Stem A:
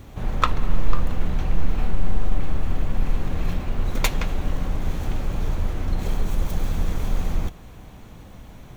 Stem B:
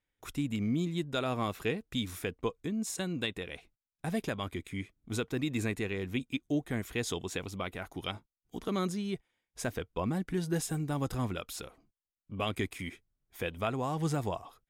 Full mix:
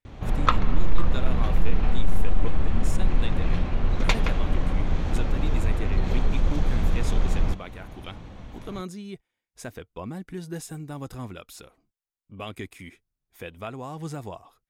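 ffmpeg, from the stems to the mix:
-filter_complex "[0:a]lowpass=4.6k,adelay=50,volume=1dB[a];[1:a]bandreject=f=3.2k:w=30,volume=-3dB[b];[a][b]amix=inputs=2:normalize=0,asoftclip=type=tanh:threshold=-3.5dB"

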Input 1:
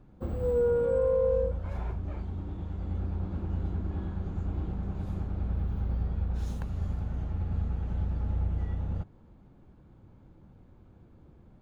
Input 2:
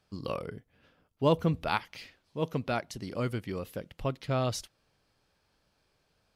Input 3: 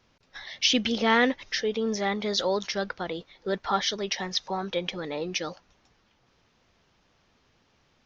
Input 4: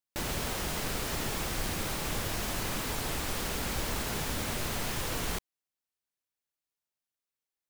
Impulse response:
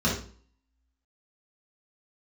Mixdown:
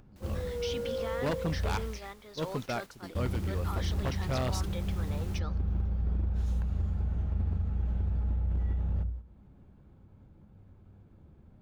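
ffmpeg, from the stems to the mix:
-filter_complex "[0:a]alimiter=level_in=2dB:limit=-24dB:level=0:latency=1:release=70,volume=-2dB,acompressor=mode=upward:threshold=-37dB:ratio=2.5,volume=-2dB,asplit=3[a][b][c];[a]atrim=end=1.82,asetpts=PTS-STARTPTS,afade=t=out:st=1.816:d=0.004:c=hsin[d];[b]atrim=start=1.82:end=3.15,asetpts=PTS-STARTPTS,volume=0[e];[c]atrim=start=3.15,asetpts=PTS-STARTPTS,afade=t=in:d=0.004:c=hsin[f];[d][e][f]concat=n=3:v=0:a=1,asplit=2[g][h];[h]volume=-23.5dB[i];[1:a]dynaudnorm=f=130:g=17:m=11.5dB,volume=-13.5dB[j];[2:a]highpass=f=220:w=0.5412,highpass=f=220:w=1.3066,equalizer=f=1.2k:t=o:w=0.74:g=7.5,alimiter=limit=-18dB:level=0:latency=1:release=21,volume=-13dB[k];[3:a]volume=-18.5dB[l];[4:a]atrim=start_sample=2205[m];[i][m]afir=irnorm=-1:irlink=0[n];[g][j][k][l][n]amix=inputs=5:normalize=0,agate=range=-9dB:threshold=-38dB:ratio=16:detection=peak,aeval=exprs='0.0668*(abs(mod(val(0)/0.0668+3,4)-2)-1)':c=same"

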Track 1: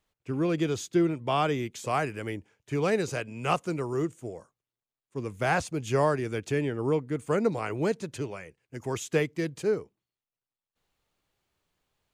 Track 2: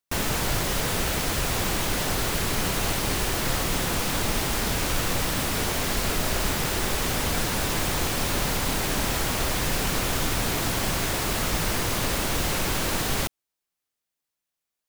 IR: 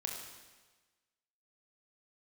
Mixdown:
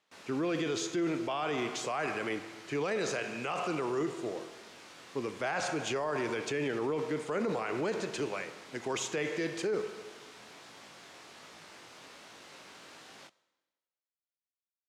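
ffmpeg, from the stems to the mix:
-filter_complex "[0:a]volume=2dB,asplit=2[a][b];[b]volume=-4.5dB[c];[1:a]flanger=delay=18:depth=6.3:speed=1.3,volume=-20dB,asplit=2[d][e];[e]volume=-16.5dB[f];[2:a]atrim=start_sample=2205[g];[c][f]amix=inputs=2:normalize=0[h];[h][g]afir=irnorm=-1:irlink=0[i];[a][d][i]amix=inputs=3:normalize=0,highpass=200,lowpass=6.2k,lowshelf=f=450:g=-6.5,alimiter=level_in=1dB:limit=-24dB:level=0:latency=1:release=20,volume=-1dB"

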